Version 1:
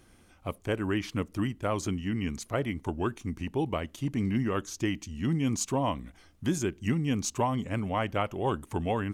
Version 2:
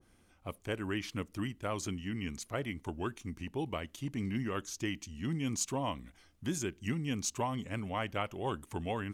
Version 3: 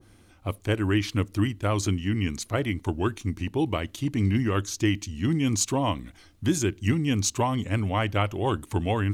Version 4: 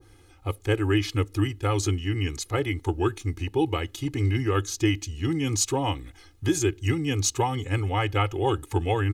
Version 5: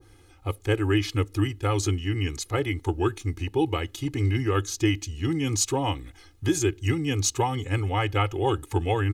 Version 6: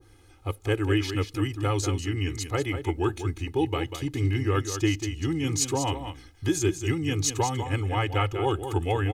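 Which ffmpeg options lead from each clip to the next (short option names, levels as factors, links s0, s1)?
-af "adynamicequalizer=threshold=0.00708:dfrequency=1500:dqfactor=0.7:tfrequency=1500:tqfactor=0.7:attack=5:release=100:ratio=0.375:range=2.5:mode=boostabove:tftype=highshelf,volume=0.447"
-af "equalizer=f=100:t=o:w=0.33:g=10,equalizer=f=315:t=o:w=0.33:g=5,equalizer=f=4000:t=o:w=0.33:g=4,volume=2.66"
-af "aecho=1:1:2.4:0.99,volume=0.794"
-af anull
-af "aecho=1:1:193:0.355,volume=0.841"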